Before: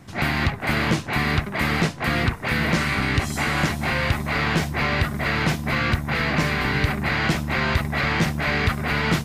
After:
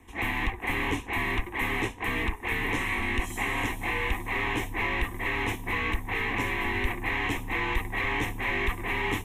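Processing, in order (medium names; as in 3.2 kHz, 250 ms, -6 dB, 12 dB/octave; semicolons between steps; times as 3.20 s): static phaser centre 970 Hz, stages 8; frequency shift -43 Hz; trim -3 dB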